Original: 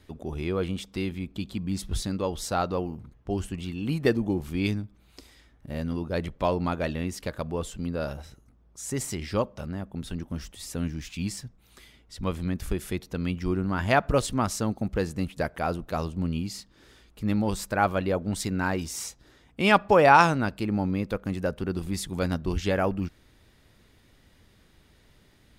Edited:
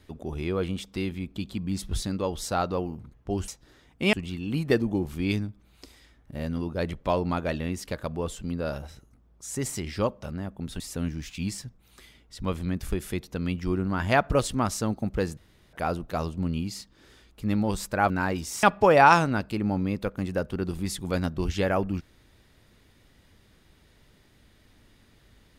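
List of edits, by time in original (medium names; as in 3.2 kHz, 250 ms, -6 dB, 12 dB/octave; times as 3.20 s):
10.15–10.59 s: delete
15.16–15.52 s: room tone
17.89–18.53 s: delete
19.06–19.71 s: move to 3.48 s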